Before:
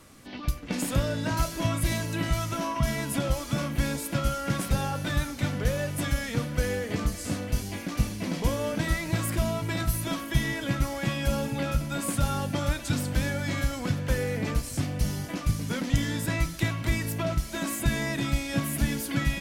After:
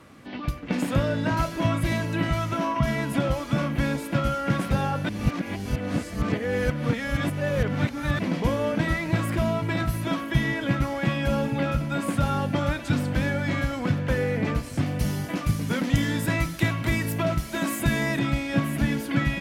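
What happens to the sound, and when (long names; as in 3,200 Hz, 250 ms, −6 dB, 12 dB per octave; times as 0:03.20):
0:05.09–0:08.19: reverse
0:14.86–0:18.19: high-shelf EQ 6,400 Hz +11 dB
whole clip: high-pass filter 180 Hz 6 dB per octave; bass and treble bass +4 dB, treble −13 dB; level +4.5 dB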